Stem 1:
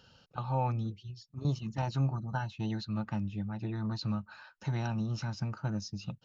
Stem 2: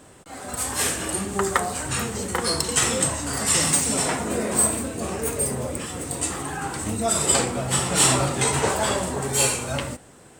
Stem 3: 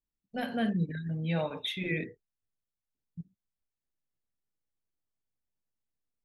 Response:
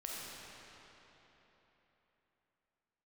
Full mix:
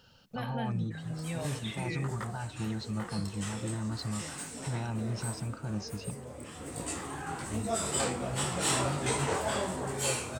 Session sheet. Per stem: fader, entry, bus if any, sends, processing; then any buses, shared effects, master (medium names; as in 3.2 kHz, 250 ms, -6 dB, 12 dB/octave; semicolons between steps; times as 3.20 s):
0.0 dB, 0.00 s, no send, peak limiter -27.5 dBFS, peak gain reduction 8 dB
-13.0 dB, 0.65 s, no send, treble shelf 5.9 kHz -6 dB; sine folder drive 5 dB, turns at -1 dBFS; detune thickener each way 45 cents; auto duck -10 dB, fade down 1.35 s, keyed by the first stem
-5.5 dB, 0.00 s, no send, three bands compressed up and down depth 70%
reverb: none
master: none